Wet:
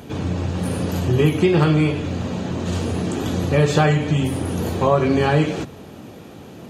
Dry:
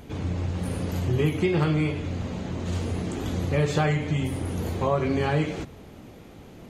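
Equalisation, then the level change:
high-pass filter 100 Hz
notch filter 2,100 Hz, Q 9.6
+7.5 dB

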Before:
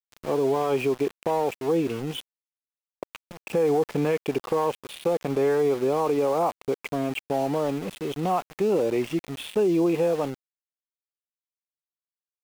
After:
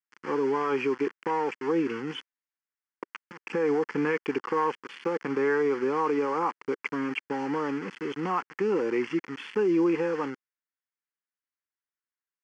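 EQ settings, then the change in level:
loudspeaker in its box 380–4,700 Hz, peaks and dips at 400 Hz −3 dB, 580 Hz −6 dB, 1,200 Hz −3 dB, 2,500 Hz −6 dB
phaser with its sweep stopped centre 1,600 Hz, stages 4
+8.0 dB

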